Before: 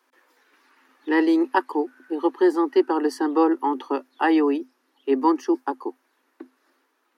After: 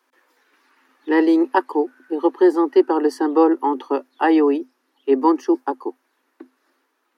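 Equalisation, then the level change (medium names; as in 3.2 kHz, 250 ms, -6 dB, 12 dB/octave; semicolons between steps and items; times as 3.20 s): dynamic bell 520 Hz, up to +6 dB, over -32 dBFS, Q 0.89; 0.0 dB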